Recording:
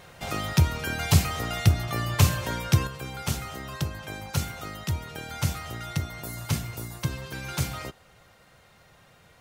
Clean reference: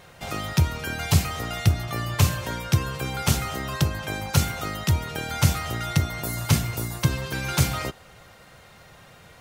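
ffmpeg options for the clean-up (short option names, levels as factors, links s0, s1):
-af "asetnsamples=n=441:p=0,asendcmd='2.87 volume volume 7dB',volume=1"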